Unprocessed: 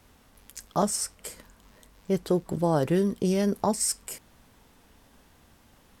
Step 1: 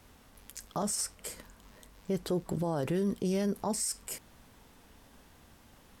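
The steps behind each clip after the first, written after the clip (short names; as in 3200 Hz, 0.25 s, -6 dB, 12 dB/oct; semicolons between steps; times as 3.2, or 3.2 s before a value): limiter -23.5 dBFS, peak gain reduction 11.5 dB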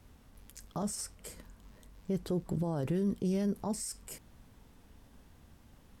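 low shelf 280 Hz +10 dB; gain -6.5 dB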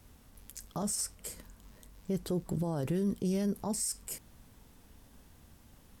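high shelf 5500 Hz +8 dB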